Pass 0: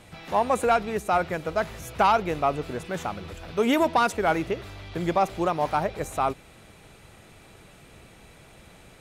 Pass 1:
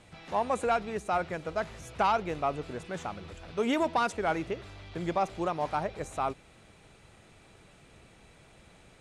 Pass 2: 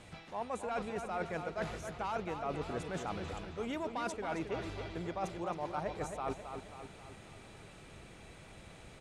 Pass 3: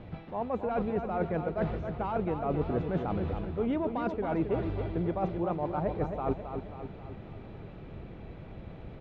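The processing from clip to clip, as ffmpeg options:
-af "lowpass=f=9700:w=0.5412,lowpass=f=9700:w=1.3066,volume=0.501"
-filter_complex "[0:a]areverse,acompressor=threshold=0.0141:ratio=10,areverse,asplit=2[s0][s1];[s1]adelay=269,lowpass=f=4400:p=1,volume=0.447,asplit=2[s2][s3];[s3]adelay=269,lowpass=f=4400:p=1,volume=0.53,asplit=2[s4][s5];[s5]adelay=269,lowpass=f=4400:p=1,volume=0.53,asplit=2[s6][s7];[s7]adelay=269,lowpass=f=4400:p=1,volume=0.53,asplit=2[s8][s9];[s9]adelay=269,lowpass=f=4400:p=1,volume=0.53,asplit=2[s10][s11];[s11]adelay=269,lowpass=f=4400:p=1,volume=0.53[s12];[s0][s2][s4][s6][s8][s10][s12]amix=inputs=7:normalize=0,volume=1.26"
-af "lowpass=f=3900:w=0.5412,lowpass=f=3900:w=1.3066,tiltshelf=f=970:g=8.5,volume=1.41"

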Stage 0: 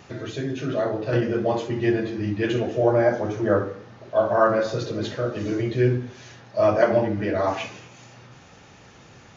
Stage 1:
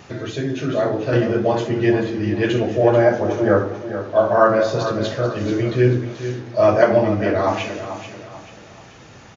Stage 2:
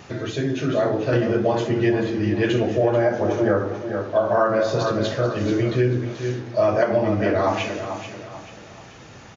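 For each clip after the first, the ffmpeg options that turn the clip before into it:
-af "aecho=1:1:437|874|1311|1748:0.282|0.104|0.0386|0.0143,volume=1.68"
-af "acompressor=threshold=0.178:ratio=6"

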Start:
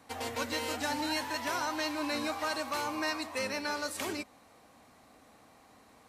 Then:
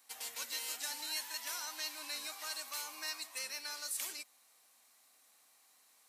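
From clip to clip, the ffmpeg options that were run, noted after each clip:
-af "aderivative,volume=1.26"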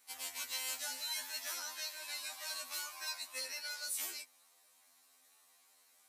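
-af "afftfilt=real='re*2*eq(mod(b,4),0)':imag='im*2*eq(mod(b,4),0)':win_size=2048:overlap=0.75,volume=1.26"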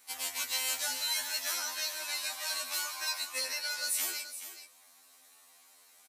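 -af "aecho=1:1:148|426:0.141|0.266,volume=2.24"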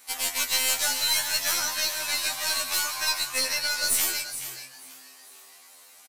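-filter_complex "[0:a]aeval=exprs='0.126*(cos(1*acos(clip(val(0)/0.126,-1,1)))-cos(1*PI/2))+0.0158*(cos(2*acos(clip(val(0)/0.126,-1,1)))-cos(2*PI/2))+0.00562*(cos(6*acos(clip(val(0)/0.126,-1,1)))-cos(6*PI/2))':c=same,asplit=5[s0][s1][s2][s3][s4];[s1]adelay=455,afreqshift=130,volume=0.112[s5];[s2]adelay=910,afreqshift=260,volume=0.0596[s6];[s3]adelay=1365,afreqshift=390,volume=0.0316[s7];[s4]adelay=1820,afreqshift=520,volume=0.0168[s8];[s0][s5][s6][s7][s8]amix=inputs=5:normalize=0,volume=2.51"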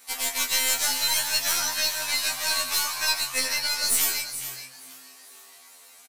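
-filter_complex "[0:a]asplit=2[s0][s1];[s1]adelay=16,volume=0.531[s2];[s0][s2]amix=inputs=2:normalize=0"

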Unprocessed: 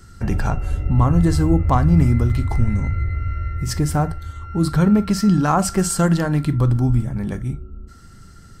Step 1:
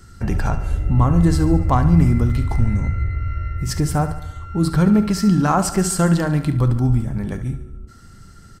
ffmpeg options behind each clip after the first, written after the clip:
-af "aecho=1:1:71|142|213|284|355|426:0.224|0.123|0.0677|0.0372|0.0205|0.0113"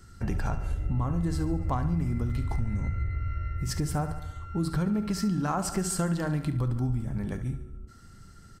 -af "acompressor=threshold=0.141:ratio=6,volume=0.447"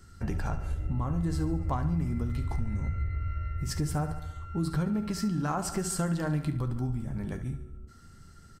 -filter_complex "[0:a]asplit=2[s0][s1];[s1]adelay=13,volume=0.251[s2];[s0][s2]amix=inputs=2:normalize=0,volume=0.794"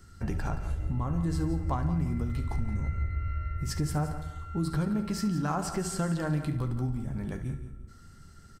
-filter_complex "[0:a]acrossover=split=6000[s0][s1];[s1]alimiter=level_in=2.37:limit=0.0631:level=0:latency=1:release=435,volume=0.422[s2];[s0][s2]amix=inputs=2:normalize=0,aecho=1:1:173|346|519:0.237|0.064|0.0173"

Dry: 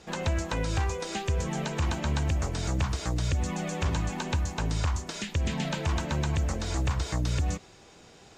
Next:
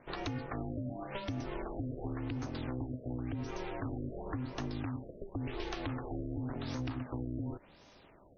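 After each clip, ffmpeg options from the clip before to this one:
-af "acompressor=threshold=0.0355:ratio=6,aeval=exprs='val(0)*sin(2*PI*190*n/s)':c=same,afftfilt=real='re*lt(b*sr/1024,660*pow(6600/660,0.5+0.5*sin(2*PI*0.92*pts/sr)))':imag='im*lt(b*sr/1024,660*pow(6600/660,0.5+0.5*sin(2*PI*0.92*pts/sr)))':win_size=1024:overlap=0.75,volume=0.75"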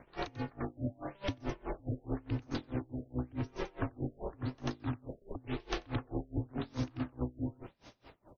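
-filter_complex "[0:a]aeval=exprs='val(0)+0.000562*(sin(2*PI*60*n/s)+sin(2*PI*2*60*n/s)/2+sin(2*PI*3*60*n/s)/3+sin(2*PI*4*60*n/s)/4+sin(2*PI*5*60*n/s)/5)':c=same,asplit=2[s0][s1];[s1]aecho=0:1:91:0.596[s2];[s0][s2]amix=inputs=2:normalize=0,aeval=exprs='val(0)*pow(10,-29*(0.5-0.5*cos(2*PI*4.7*n/s))/20)':c=same,volume=1.78"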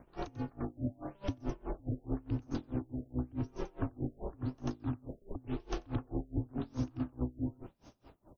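-af "equalizer=f=125:t=o:w=1:g=-3,equalizer=f=500:t=o:w=1:g=-5,equalizer=f=1000:t=o:w=1:g=-3,equalizer=f=2000:t=o:w=1:g=-11,equalizer=f=4000:t=o:w=1:g=-10,volume=1.41"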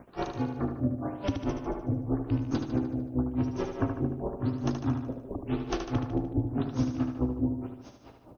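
-filter_complex "[0:a]highpass=f=87:p=1,asplit=2[s0][s1];[s1]aecho=0:1:75|150|225|300|375|450|525:0.473|0.27|0.154|0.0876|0.0499|0.0285|0.0162[s2];[s0][s2]amix=inputs=2:normalize=0,volume=2.51"

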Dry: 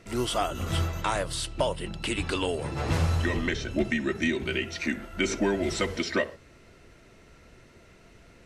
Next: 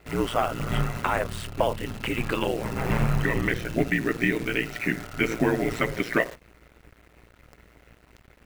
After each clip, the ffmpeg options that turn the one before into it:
-af "highshelf=f=3100:t=q:w=1.5:g=-10,acrusher=bits=8:dc=4:mix=0:aa=0.000001,aeval=exprs='val(0)*sin(2*PI*58*n/s)':c=same,volume=1.78"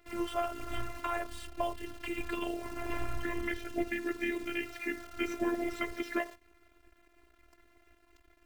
-af "afftfilt=real='hypot(re,im)*cos(PI*b)':imag='0':win_size=512:overlap=0.75,volume=0.501"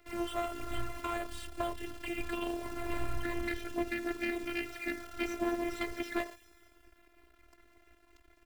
-filter_complex "[0:a]acrossover=split=230|3400[s0][s1][s2];[s1]aeval=exprs='clip(val(0),-1,0.0075)':c=same[s3];[s2]aecho=1:1:202|404|606|808|1010|1212:0.237|0.133|0.0744|0.0416|0.0233|0.0131[s4];[s0][s3][s4]amix=inputs=3:normalize=0,volume=1.12"

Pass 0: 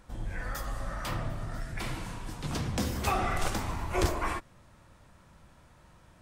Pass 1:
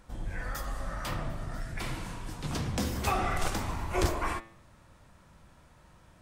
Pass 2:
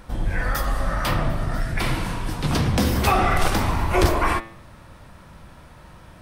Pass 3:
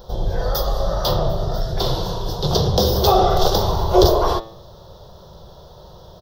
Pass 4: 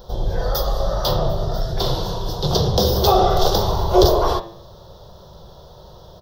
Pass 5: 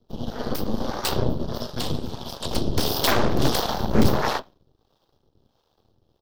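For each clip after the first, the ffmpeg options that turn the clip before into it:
-af "bandreject=f=111.7:t=h:w=4,bandreject=f=223.4:t=h:w=4,bandreject=f=335.1:t=h:w=4,bandreject=f=446.8:t=h:w=4,bandreject=f=558.5:t=h:w=4,bandreject=f=670.2:t=h:w=4,bandreject=f=781.9:t=h:w=4,bandreject=f=893.6:t=h:w=4,bandreject=f=1005.3:t=h:w=4,bandreject=f=1117:t=h:w=4,bandreject=f=1228.7:t=h:w=4,bandreject=f=1340.4:t=h:w=4,bandreject=f=1452.1:t=h:w=4,bandreject=f=1563.8:t=h:w=4,bandreject=f=1675.5:t=h:w=4,bandreject=f=1787.2:t=h:w=4,bandreject=f=1898.9:t=h:w=4,bandreject=f=2010.6:t=h:w=4,bandreject=f=2122.3:t=h:w=4,bandreject=f=2234:t=h:w=4,bandreject=f=2345.7:t=h:w=4,bandreject=f=2457.4:t=h:w=4,bandreject=f=2569.1:t=h:w=4,bandreject=f=2680.8:t=h:w=4,bandreject=f=2792.5:t=h:w=4,bandreject=f=2904.2:t=h:w=4,bandreject=f=3015.9:t=h:w=4,bandreject=f=3127.6:t=h:w=4,bandreject=f=3239.3:t=h:w=4,bandreject=f=3351:t=h:w=4,bandreject=f=3462.7:t=h:w=4,bandreject=f=3574.4:t=h:w=4,bandreject=f=3686.1:t=h:w=4,bandreject=f=3797.8:t=h:w=4,bandreject=f=3909.5:t=h:w=4,bandreject=f=4021.2:t=h:w=4,bandreject=f=4132.9:t=h:w=4,bandreject=f=4244.6:t=h:w=4,bandreject=f=4356.3:t=h:w=4"
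-filter_complex "[0:a]equalizer=f=7100:w=2.3:g=-7,asplit=2[s0][s1];[s1]alimiter=level_in=1.06:limit=0.0631:level=0:latency=1:release=65,volume=0.944,volume=1[s2];[s0][s2]amix=inputs=2:normalize=0,volume=2.11"
-af "firequalizer=gain_entry='entry(180,0);entry(270,-15);entry(380,9);entry(590,7);entry(2300,-25);entry(3400,7);entry(5600,7);entry(8600,-18);entry(15000,9)':delay=0.05:min_phase=1,volume=1.26"
-af "bandreject=f=85.81:t=h:w=4,bandreject=f=171.62:t=h:w=4,bandreject=f=257.43:t=h:w=4,bandreject=f=343.24:t=h:w=4,bandreject=f=429.05:t=h:w=4,bandreject=f=514.86:t=h:w=4,bandreject=f=600.67:t=h:w=4,bandreject=f=686.48:t=h:w=4,bandreject=f=772.29:t=h:w=4,bandreject=f=858.1:t=h:w=4,bandreject=f=943.91:t=h:w=4,bandreject=f=1029.72:t=h:w=4,bandreject=f=1115.53:t=h:w=4,bandreject=f=1201.34:t=h:w=4,bandreject=f=1287.15:t=h:w=4,bandreject=f=1372.96:t=h:w=4,bandreject=f=1458.77:t=h:w=4,bandreject=f=1544.58:t=h:w=4,bandreject=f=1630.39:t=h:w=4,bandreject=f=1716.2:t=h:w=4,bandreject=f=1802.01:t=h:w=4,bandreject=f=1887.82:t=h:w=4,bandreject=f=1973.63:t=h:w=4,bandreject=f=2059.44:t=h:w=4,bandreject=f=2145.25:t=h:w=4,bandreject=f=2231.06:t=h:w=4,bandreject=f=2316.87:t=h:w=4,bandreject=f=2402.68:t=h:w=4,bandreject=f=2488.49:t=h:w=4,bandreject=f=2574.3:t=h:w=4,bandreject=f=2660.11:t=h:w=4,bandreject=f=2745.92:t=h:w=4,bandreject=f=2831.73:t=h:w=4"
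-filter_complex "[0:a]afreqshift=-150,aeval=exprs='0.944*(cos(1*acos(clip(val(0)/0.944,-1,1)))-cos(1*PI/2))+0.119*(cos(7*acos(clip(val(0)/0.944,-1,1)))-cos(7*PI/2))+0.335*(cos(8*acos(clip(val(0)/0.944,-1,1)))-cos(8*PI/2))':c=same,acrossover=split=490[s0][s1];[s0]aeval=exprs='val(0)*(1-0.7/2+0.7/2*cos(2*PI*1.5*n/s))':c=same[s2];[s1]aeval=exprs='val(0)*(1-0.7/2-0.7/2*cos(2*PI*1.5*n/s))':c=same[s3];[s2][s3]amix=inputs=2:normalize=0,volume=0.501"

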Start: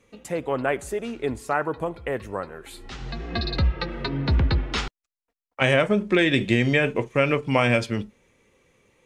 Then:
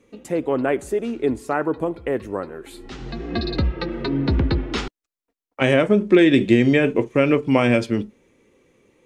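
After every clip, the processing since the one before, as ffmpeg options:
-af "equalizer=f=310:t=o:w=1.3:g=10,volume=0.891"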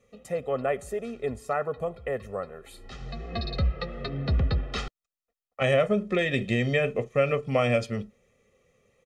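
-af "aecho=1:1:1.6:0.95,volume=0.376"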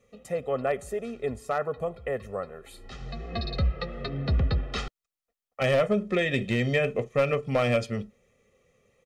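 -af "aeval=exprs='clip(val(0),-1,0.133)':c=same"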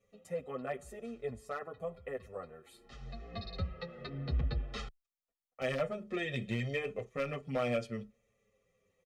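-filter_complex "[0:a]asplit=2[s0][s1];[s1]adelay=7.2,afreqshift=-0.58[s2];[s0][s2]amix=inputs=2:normalize=1,volume=0.447"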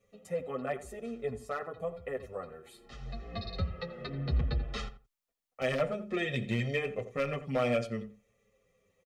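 -filter_complex "[0:a]asplit=2[s0][s1];[s1]adelay=86,lowpass=f=1600:p=1,volume=0.251,asplit=2[s2][s3];[s3]adelay=86,lowpass=f=1600:p=1,volume=0.18[s4];[s0][s2][s4]amix=inputs=3:normalize=0,volume=1.5"

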